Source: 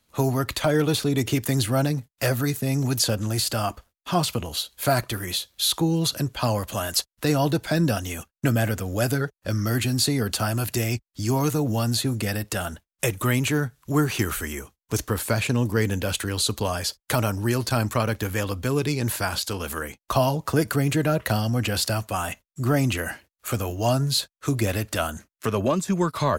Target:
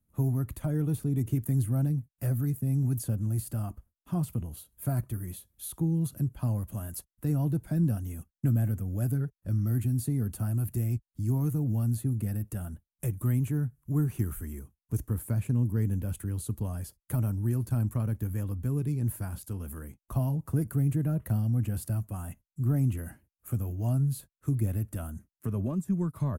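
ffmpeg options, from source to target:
-af "firequalizer=gain_entry='entry(140,0);entry(480,-16);entry(4100,-30);entry(10000,-9)':delay=0.05:min_phase=1,volume=-1.5dB"

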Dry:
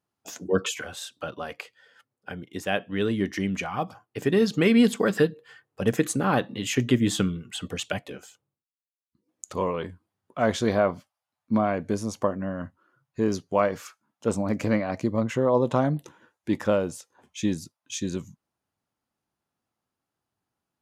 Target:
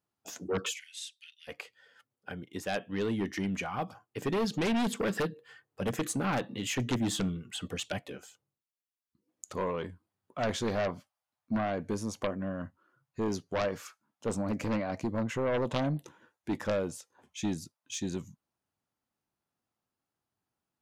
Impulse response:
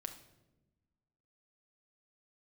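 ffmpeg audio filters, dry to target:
-filter_complex "[0:a]aeval=exprs='0.422*(cos(1*acos(clip(val(0)/0.422,-1,1)))-cos(1*PI/2))+0.211*(cos(3*acos(clip(val(0)/0.422,-1,1)))-cos(3*PI/2))+0.15*(cos(5*acos(clip(val(0)/0.422,-1,1)))-cos(5*PI/2))':c=same,asplit=3[a][b][c];[a]afade=t=out:st=0.73:d=0.02[d];[b]asuperpass=centerf=5200:order=20:qfactor=0.53,afade=t=in:st=0.73:d=0.02,afade=t=out:st=1.47:d=0.02[e];[c]afade=t=in:st=1.47:d=0.02[f];[d][e][f]amix=inputs=3:normalize=0,volume=-6dB"

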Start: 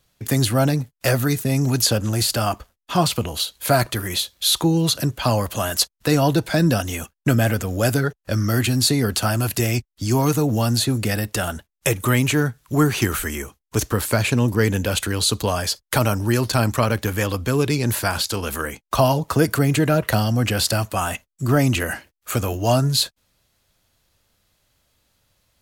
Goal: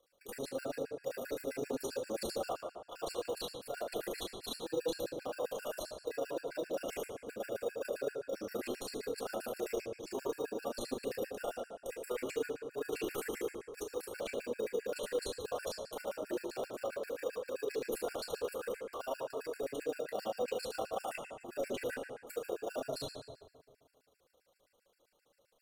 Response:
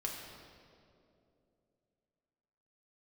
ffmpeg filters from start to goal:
-filter_complex "[0:a]highpass=f=470:t=q:w=4.9,areverse,acompressor=threshold=-24dB:ratio=12,areverse,alimiter=limit=-21dB:level=0:latency=1:release=103,tremolo=f=27:d=0.824,asplit=2[a][b];[b]acrusher=samples=21:mix=1:aa=0.000001,volume=-5.5dB[c];[a][c]amix=inputs=2:normalize=0[d];[1:a]atrim=start_sample=2205,asetrate=79380,aresample=44100[e];[d][e]afir=irnorm=-1:irlink=0,afftfilt=real='re*gt(sin(2*PI*7.6*pts/sr)*(1-2*mod(floor(b*sr/1024/1400),2)),0)':imag='im*gt(sin(2*PI*7.6*pts/sr)*(1-2*mod(floor(b*sr/1024/1400),2)),0)':win_size=1024:overlap=0.75,volume=-1dB"

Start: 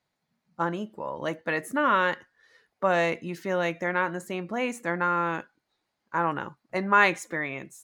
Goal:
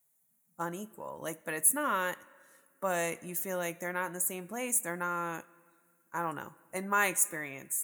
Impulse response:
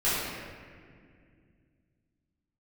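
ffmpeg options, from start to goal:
-filter_complex "[0:a]aexciter=amount=13.5:drive=9:freq=7.3k,asplit=2[a][b];[1:a]atrim=start_sample=2205,lowshelf=f=490:g=-9.5[c];[b][c]afir=irnorm=-1:irlink=0,volume=-31dB[d];[a][d]amix=inputs=2:normalize=0,volume=-8.5dB"

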